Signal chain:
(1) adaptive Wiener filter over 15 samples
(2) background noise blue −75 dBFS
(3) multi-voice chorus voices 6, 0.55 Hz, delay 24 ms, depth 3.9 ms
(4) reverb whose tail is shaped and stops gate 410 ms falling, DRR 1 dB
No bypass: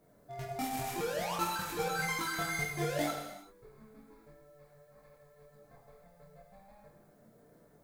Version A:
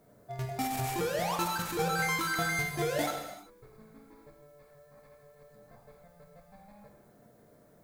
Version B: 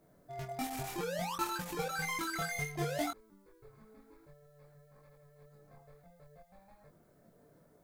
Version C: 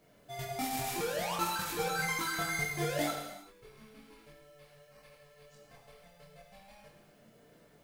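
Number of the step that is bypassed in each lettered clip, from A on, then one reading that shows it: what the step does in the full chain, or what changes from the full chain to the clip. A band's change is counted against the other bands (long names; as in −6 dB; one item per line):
3, 125 Hz band +2.0 dB
4, change in momentary loudness spread −3 LU
1, 8 kHz band +2.5 dB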